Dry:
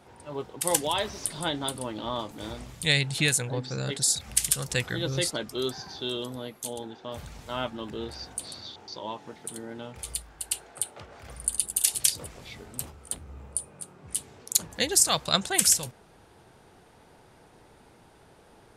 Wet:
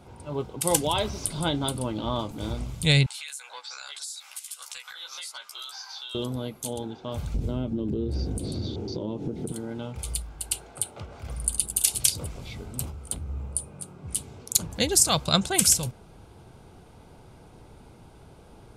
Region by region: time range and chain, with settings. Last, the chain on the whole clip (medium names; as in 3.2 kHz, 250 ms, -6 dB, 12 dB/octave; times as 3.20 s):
3.06–6.15 s: high-pass 1 kHz 24 dB/octave + compression 8:1, threshold -37 dBFS + doubling 14 ms -2 dB
7.34–9.52 s: resonant low shelf 600 Hz +14 dB, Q 1.5 + compression 4:1, threshold -33 dBFS
whole clip: bass shelf 210 Hz +11.5 dB; band-stop 1.8 kHz, Q 5.1; trim +1 dB